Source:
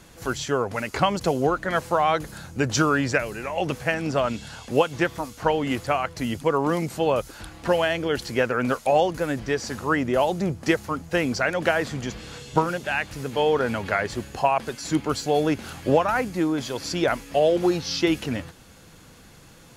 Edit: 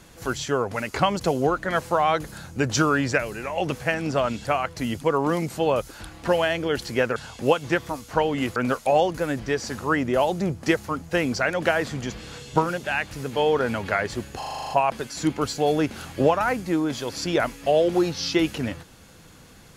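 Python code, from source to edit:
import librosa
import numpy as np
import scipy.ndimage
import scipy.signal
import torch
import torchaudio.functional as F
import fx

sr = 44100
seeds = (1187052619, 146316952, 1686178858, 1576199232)

y = fx.edit(x, sr, fx.move(start_s=4.45, length_s=1.4, to_s=8.56),
    fx.stutter(start_s=14.38, slice_s=0.04, count=9), tone=tone)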